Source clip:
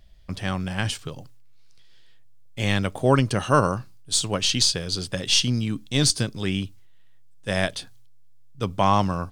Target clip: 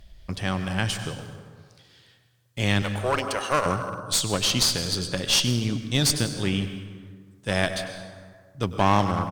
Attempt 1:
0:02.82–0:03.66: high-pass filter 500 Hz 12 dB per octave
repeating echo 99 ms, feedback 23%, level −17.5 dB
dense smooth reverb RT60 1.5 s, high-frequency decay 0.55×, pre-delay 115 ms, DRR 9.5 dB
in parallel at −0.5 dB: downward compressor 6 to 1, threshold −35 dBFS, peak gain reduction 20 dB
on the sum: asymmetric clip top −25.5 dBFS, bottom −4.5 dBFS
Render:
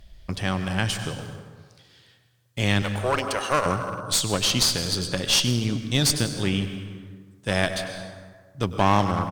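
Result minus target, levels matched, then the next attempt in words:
downward compressor: peak gain reduction −9.5 dB
0:02.82–0:03.66: high-pass filter 500 Hz 12 dB per octave
repeating echo 99 ms, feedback 23%, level −17.5 dB
dense smooth reverb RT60 1.5 s, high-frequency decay 0.55×, pre-delay 115 ms, DRR 9.5 dB
in parallel at −0.5 dB: downward compressor 6 to 1, threshold −46.5 dBFS, peak gain reduction 29.5 dB
on the sum: asymmetric clip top −25.5 dBFS, bottom −4.5 dBFS

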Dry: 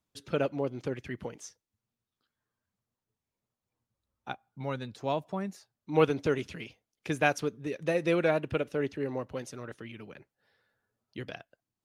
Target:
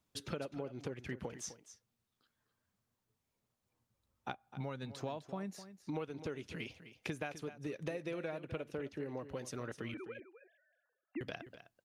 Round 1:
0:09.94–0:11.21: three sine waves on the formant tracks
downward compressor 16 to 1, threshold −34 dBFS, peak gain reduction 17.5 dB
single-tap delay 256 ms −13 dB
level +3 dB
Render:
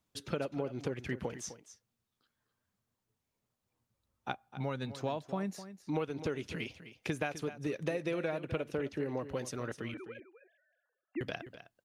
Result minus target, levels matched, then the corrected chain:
downward compressor: peak gain reduction −6 dB
0:09.94–0:11.21: three sine waves on the formant tracks
downward compressor 16 to 1, threshold −40.5 dBFS, peak gain reduction 23.5 dB
single-tap delay 256 ms −13 dB
level +3 dB

